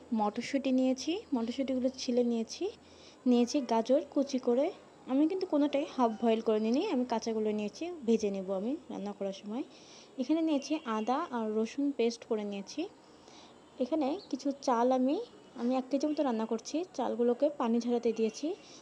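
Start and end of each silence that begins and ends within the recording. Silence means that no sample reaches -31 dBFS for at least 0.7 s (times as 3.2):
12.84–13.81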